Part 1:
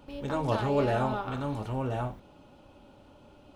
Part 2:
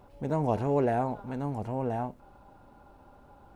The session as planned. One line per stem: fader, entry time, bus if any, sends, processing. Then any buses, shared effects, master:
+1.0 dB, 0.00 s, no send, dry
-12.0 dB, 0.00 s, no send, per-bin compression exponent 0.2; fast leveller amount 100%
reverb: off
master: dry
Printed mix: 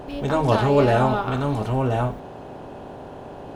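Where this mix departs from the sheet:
stem 1 +1.0 dB -> +9.0 dB; stem 2: missing fast leveller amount 100%

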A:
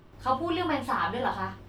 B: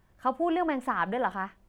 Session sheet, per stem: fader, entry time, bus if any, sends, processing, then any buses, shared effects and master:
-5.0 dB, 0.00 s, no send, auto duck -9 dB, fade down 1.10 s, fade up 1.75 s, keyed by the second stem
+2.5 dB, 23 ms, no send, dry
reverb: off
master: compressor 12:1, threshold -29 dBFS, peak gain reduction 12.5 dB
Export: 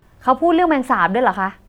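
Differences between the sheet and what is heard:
stem B +2.5 dB -> +12.5 dB; master: missing compressor 12:1, threshold -29 dBFS, peak gain reduction 12.5 dB

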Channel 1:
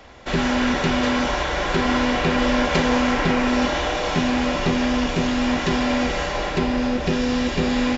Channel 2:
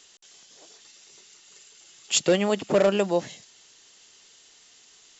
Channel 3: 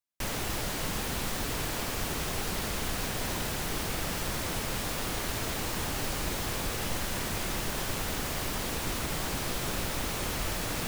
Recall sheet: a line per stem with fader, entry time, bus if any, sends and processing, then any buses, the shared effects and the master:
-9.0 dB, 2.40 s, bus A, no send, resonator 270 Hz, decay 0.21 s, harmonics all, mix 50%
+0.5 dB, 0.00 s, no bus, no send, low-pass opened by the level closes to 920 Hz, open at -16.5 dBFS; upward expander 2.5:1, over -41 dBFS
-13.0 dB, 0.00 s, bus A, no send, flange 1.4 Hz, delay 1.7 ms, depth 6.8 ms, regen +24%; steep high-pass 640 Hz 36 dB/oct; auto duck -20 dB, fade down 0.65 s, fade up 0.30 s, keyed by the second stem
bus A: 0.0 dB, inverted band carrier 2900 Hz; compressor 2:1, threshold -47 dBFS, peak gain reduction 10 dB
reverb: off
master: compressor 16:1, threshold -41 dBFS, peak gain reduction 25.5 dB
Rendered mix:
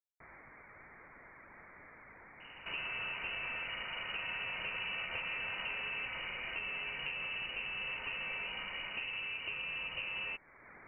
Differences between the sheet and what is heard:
stem 1: missing resonator 270 Hz, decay 0.21 s, harmonics all, mix 50%; stem 2: muted; master: missing compressor 16:1, threshold -41 dBFS, peak gain reduction 25.5 dB

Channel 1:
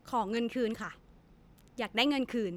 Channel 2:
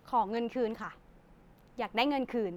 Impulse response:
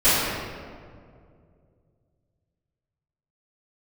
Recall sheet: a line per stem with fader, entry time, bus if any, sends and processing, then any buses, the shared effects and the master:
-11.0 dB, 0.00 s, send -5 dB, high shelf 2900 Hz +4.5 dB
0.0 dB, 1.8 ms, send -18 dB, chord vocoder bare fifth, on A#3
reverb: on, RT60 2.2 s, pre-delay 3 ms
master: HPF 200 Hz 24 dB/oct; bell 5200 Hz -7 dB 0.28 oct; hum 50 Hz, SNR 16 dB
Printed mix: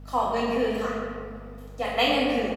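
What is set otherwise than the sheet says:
stem 2: missing chord vocoder bare fifth, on A#3; master: missing bell 5200 Hz -7 dB 0.28 oct

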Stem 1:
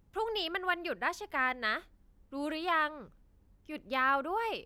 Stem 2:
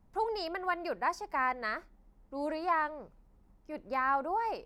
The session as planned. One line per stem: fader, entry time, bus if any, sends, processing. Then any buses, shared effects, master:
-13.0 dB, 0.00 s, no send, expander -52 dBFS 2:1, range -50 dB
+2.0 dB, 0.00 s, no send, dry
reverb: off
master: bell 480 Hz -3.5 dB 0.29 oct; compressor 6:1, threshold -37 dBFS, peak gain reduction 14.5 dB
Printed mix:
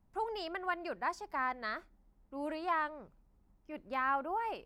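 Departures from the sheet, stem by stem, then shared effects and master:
stem 2 +2.0 dB -> -6.0 dB; master: missing compressor 6:1, threshold -37 dBFS, peak gain reduction 14.5 dB

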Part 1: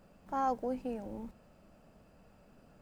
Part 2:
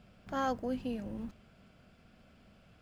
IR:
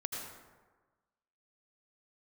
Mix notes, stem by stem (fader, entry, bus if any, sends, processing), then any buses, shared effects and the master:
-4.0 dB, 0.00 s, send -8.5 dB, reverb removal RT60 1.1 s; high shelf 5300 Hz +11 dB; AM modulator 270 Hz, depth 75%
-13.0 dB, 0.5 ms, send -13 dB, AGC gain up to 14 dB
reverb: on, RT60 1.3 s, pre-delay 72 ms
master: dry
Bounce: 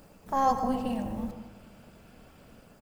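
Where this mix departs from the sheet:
stem 1 -4.0 dB -> +5.0 dB; reverb return +8.0 dB

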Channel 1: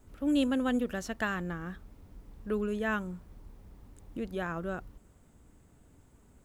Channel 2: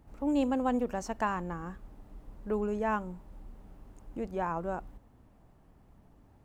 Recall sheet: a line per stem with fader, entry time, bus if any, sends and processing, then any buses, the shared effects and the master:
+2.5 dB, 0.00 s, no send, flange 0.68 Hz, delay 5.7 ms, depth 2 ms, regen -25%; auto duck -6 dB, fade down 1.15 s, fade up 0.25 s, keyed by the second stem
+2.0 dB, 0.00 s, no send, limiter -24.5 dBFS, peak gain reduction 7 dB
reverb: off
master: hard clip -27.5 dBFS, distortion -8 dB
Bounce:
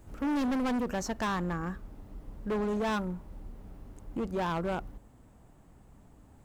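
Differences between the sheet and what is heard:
stem 1: missing flange 0.68 Hz, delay 5.7 ms, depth 2 ms, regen -25%; stem 2: missing limiter -24.5 dBFS, peak gain reduction 7 dB

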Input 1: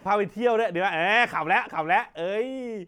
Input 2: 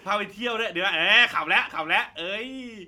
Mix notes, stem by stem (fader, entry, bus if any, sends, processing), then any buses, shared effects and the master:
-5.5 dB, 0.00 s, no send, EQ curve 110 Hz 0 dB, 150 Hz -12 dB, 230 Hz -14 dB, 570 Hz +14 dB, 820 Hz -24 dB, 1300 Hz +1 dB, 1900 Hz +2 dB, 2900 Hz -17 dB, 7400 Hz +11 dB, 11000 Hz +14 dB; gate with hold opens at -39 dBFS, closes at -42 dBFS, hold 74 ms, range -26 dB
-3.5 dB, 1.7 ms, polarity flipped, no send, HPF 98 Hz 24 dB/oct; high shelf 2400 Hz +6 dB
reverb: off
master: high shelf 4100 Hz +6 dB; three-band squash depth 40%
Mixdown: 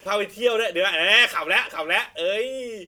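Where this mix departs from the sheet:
stem 2: missing HPF 98 Hz 24 dB/oct; master: missing three-band squash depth 40%

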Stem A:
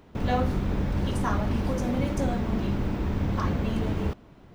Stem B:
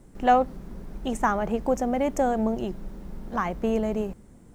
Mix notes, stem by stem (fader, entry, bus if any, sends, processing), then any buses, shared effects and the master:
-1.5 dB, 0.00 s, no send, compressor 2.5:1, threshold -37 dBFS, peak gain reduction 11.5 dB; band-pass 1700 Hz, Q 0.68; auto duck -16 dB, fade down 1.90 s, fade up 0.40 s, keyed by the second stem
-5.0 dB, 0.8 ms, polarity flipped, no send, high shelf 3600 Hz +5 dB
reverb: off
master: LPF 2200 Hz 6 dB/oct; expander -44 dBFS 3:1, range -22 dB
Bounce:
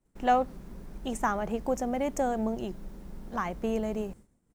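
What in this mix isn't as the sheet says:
stem A -1.5 dB -> -10.5 dB; master: missing LPF 2200 Hz 6 dB/oct

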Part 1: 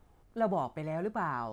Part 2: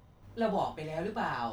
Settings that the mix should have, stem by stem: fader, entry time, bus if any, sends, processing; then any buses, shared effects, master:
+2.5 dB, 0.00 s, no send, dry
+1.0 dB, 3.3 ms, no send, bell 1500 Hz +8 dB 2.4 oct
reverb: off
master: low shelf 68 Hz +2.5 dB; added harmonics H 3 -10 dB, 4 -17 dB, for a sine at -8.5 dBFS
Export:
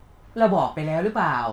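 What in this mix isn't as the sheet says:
stem 1 +2.5 dB -> +9.0 dB; master: missing added harmonics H 3 -10 dB, 4 -17 dB, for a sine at -8.5 dBFS

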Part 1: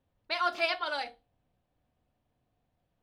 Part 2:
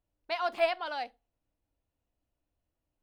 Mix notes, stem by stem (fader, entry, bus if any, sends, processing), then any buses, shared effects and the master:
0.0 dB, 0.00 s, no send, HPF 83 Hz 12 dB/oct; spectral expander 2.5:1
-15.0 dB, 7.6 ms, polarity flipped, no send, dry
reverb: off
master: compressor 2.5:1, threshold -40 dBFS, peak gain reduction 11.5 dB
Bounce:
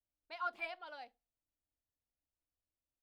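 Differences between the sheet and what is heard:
stem 1 0.0 dB -> -11.0 dB; master: missing compressor 2.5:1, threshold -40 dBFS, peak gain reduction 11.5 dB

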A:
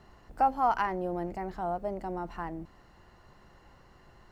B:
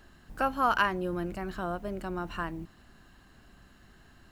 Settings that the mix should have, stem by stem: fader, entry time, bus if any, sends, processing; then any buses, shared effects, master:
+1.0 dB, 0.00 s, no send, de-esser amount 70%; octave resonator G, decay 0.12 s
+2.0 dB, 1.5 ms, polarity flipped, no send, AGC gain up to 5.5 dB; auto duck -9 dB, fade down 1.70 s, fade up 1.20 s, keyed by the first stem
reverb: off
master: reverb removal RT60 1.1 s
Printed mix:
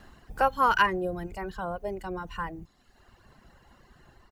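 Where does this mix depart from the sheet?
stem A: missing octave resonator G, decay 0.12 s; stem B: polarity flipped

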